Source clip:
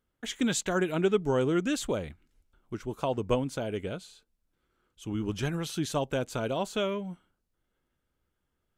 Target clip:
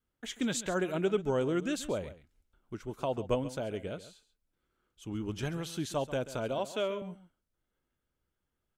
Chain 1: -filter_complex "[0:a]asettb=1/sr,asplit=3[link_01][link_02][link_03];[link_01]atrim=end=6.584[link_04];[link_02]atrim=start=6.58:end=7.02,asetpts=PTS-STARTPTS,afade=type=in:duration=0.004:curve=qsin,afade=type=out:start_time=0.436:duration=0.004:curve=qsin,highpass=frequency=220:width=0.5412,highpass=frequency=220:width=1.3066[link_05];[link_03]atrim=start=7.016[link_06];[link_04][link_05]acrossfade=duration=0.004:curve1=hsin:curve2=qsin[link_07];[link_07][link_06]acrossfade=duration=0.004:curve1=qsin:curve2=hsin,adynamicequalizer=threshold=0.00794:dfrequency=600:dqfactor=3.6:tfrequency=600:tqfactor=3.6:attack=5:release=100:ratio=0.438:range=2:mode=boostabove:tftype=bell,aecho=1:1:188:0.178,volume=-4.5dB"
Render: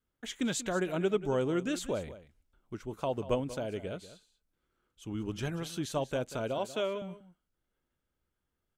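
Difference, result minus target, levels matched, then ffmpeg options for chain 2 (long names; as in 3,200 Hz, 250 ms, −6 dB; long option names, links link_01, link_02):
echo 53 ms late
-filter_complex "[0:a]asettb=1/sr,asplit=3[link_01][link_02][link_03];[link_01]atrim=end=6.584[link_04];[link_02]atrim=start=6.58:end=7.02,asetpts=PTS-STARTPTS,afade=type=in:duration=0.004:curve=qsin,afade=type=out:start_time=0.436:duration=0.004:curve=qsin,highpass=frequency=220:width=0.5412,highpass=frequency=220:width=1.3066[link_05];[link_03]atrim=start=7.016[link_06];[link_04][link_05]acrossfade=duration=0.004:curve1=hsin:curve2=qsin[link_07];[link_07][link_06]acrossfade=duration=0.004:curve1=qsin:curve2=hsin,adynamicequalizer=threshold=0.00794:dfrequency=600:dqfactor=3.6:tfrequency=600:tqfactor=3.6:attack=5:release=100:ratio=0.438:range=2:mode=boostabove:tftype=bell,aecho=1:1:135:0.178,volume=-4.5dB"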